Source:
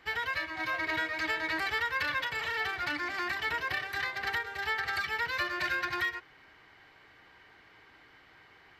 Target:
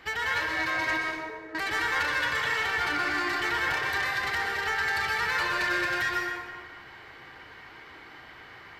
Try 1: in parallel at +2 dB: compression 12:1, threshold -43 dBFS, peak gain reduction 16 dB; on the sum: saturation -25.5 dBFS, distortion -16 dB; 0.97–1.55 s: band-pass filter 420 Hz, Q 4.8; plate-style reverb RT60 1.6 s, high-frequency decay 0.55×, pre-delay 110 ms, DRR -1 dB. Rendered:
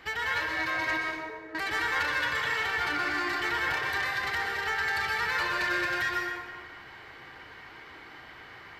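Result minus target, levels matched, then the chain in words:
compression: peak gain reduction +7.5 dB
in parallel at +2 dB: compression 12:1, threshold -35 dBFS, peak gain reduction 9 dB; on the sum: saturation -25.5 dBFS, distortion -14 dB; 0.97–1.55 s: band-pass filter 420 Hz, Q 4.8; plate-style reverb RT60 1.6 s, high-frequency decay 0.55×, pre-delay 110 ms, DRR -1 dB

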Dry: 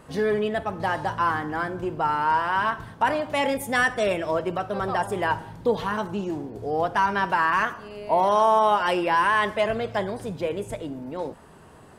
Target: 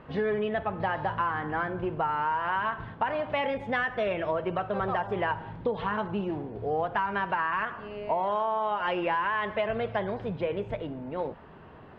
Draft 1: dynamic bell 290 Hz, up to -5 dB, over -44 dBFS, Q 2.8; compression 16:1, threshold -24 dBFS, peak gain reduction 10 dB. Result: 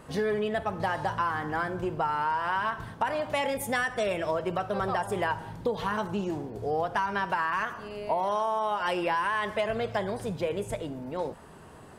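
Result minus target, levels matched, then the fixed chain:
4 kHz band +3.0 dB
dynamic bell 290 Hz, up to -5 dB, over -44 dBFS, Q 2.8; compression 16:1, threshold -24 dBFS, peak gain reduction 10 dB; low-pass 3.2 kHz 24 dB/octave

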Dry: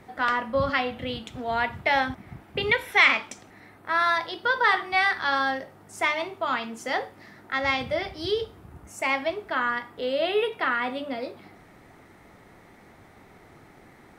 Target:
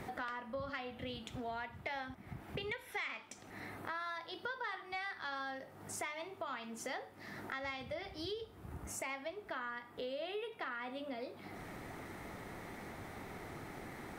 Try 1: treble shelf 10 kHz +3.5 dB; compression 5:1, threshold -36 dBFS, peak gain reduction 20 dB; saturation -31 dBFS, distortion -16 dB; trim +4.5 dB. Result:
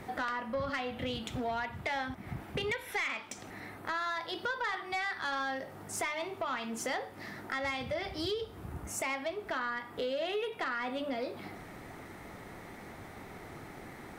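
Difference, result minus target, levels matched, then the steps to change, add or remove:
compression: peak gain reduction -9 dB
change: compression 5:1, threshold -47 dBFS, peak gain reduction 29 dB

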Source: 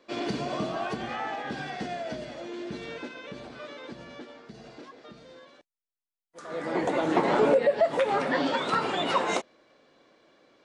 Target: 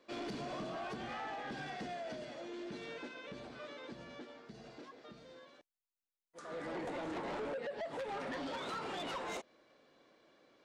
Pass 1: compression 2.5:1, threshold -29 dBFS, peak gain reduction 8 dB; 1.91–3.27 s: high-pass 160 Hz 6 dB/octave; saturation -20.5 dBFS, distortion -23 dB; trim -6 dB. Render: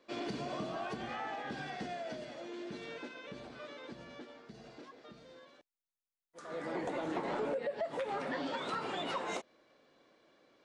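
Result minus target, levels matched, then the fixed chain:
saturation: distortion -13 dB
compression 2.5:1, threshold -29 dBFS, peak gain reduction 8 dB; 1.91–3.27 s: high-pass 160 Hz 6 dB/octave; saturation -31 dBFS, distortion -10 dB; trim -6 dB

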